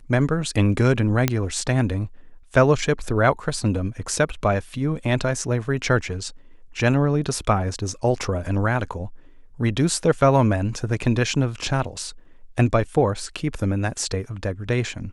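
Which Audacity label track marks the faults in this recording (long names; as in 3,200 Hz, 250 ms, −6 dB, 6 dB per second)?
1.280000	1.280000	click −4 dBFS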